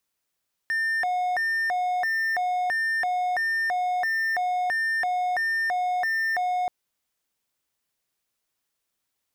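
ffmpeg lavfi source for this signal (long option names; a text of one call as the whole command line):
ffmpeg -f lavfi -i "aevalsrc='0.0944*(1-4*abs(mod((1262.5*t+537.5/1.5*(0.5-abs(mod(1.5*t,1)-0.5)))+0.25,1)-0.5))':duration=5.98:sample_rate=44100" out.wav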